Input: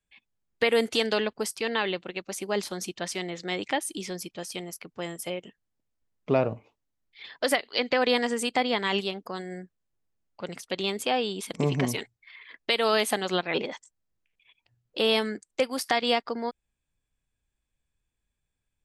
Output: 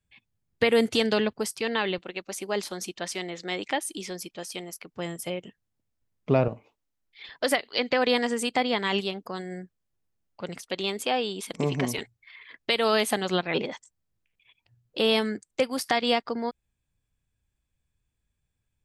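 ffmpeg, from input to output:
ffmpeg -i in.wav -af "asetnsamples=nb_out_samples=441:pad=0,asendcmd='1.35 equalizer g 6;1.98 equalizer g -5;4.94 equalizer g 7;6.48 equalizer g -4;7.29 equalizer g 3.5;10.58 equalizer g -3;11.98 equalizer g 7.5',equalizer=frequency=100:width_type=o:width=1.9:gain=13.5" out.wav

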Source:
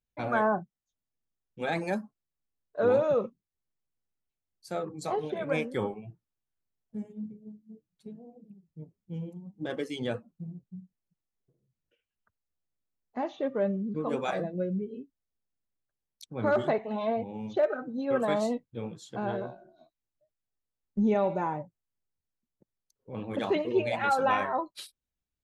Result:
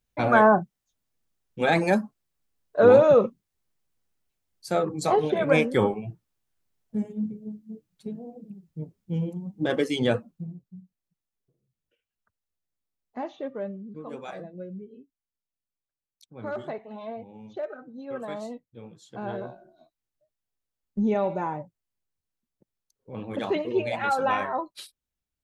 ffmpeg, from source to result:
ffmpeg -i in.wav -af "volume=17.5dB,afade=type=out:start_time=10.14:duration=0.48:silence=0.316228,afade=type=out:start_time=13.22:duration=0.56:silence=0.473151,afade=type=in:start_time=18.88:duration=0.63:silence=0.375837" out.wav

